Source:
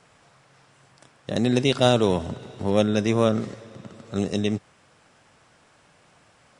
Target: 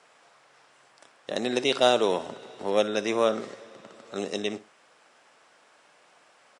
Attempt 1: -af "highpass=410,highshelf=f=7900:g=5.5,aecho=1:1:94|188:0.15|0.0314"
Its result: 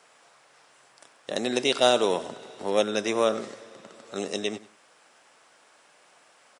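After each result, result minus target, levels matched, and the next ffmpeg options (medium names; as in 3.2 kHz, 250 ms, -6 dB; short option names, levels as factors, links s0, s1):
echo 35 ms late; 8 kHz band +3.5 dB
-af "highpass=410,highshelf=f=7900:g=5.5,aecho=1:1:59|118:0.15|0.0314"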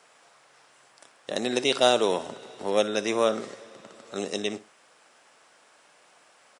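8 kHz band +3.5 dB
-af "highpass=410,highshelf=f=7900:g=-4.5,aecho=1:1:59|118:0.15|0.0314"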